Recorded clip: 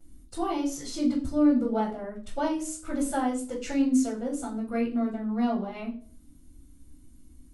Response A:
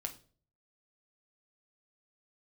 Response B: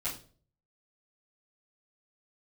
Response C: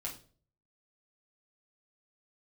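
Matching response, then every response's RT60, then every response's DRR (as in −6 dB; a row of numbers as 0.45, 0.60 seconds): B; 0.45, 0.45, 0.45 seconds; 4.0, −13.0, −4.0 decibels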